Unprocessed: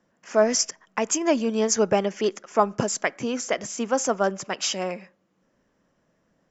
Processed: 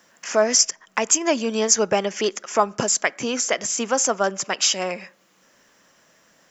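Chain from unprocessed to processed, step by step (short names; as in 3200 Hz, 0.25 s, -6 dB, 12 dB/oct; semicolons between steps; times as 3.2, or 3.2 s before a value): tilt +2 dB/oct; in parallel at +1 dB: compressor, threshold -30 dBFS, peak gain reduction 15.5 dB; on the sum: mismatched tape noise reduction encoder only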